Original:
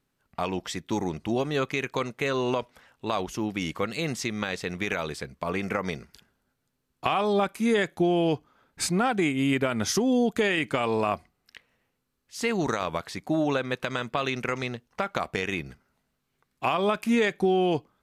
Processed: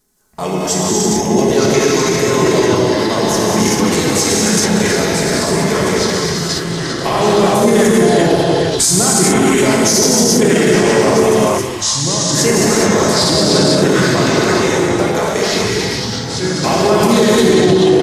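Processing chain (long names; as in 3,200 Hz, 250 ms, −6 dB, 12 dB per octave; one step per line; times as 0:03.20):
comb filter 4.7 ms, depth 50%
reverb whose tail is shaped and stops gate 460 ms flat, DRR −4.5 dB
transient designer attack −1 dB, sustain +8 dB
high shelf with overshoot 4,800 Hz +10 dB, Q 1.5
mains-hum notches 50/100/150/200/250/300/350/400 Hz
delay with pitch and tempo change per echo 731 ms, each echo −4 semitones, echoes 3, each echo −6 dB
echo through a band-pass that steps 429 ms, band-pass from 1,400 Hz, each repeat 1.4 octaves, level −6.5 dB
pitch-shifted copies added −4 semitones −15 dB, −3 semitones −7 dB
thirty-one-band graphic EQ 400 Hz +5 dB, 1,250 Hz −4 dB, 2,500 Hz −5 dB
boost into a limiter +7 dB
level −1 dB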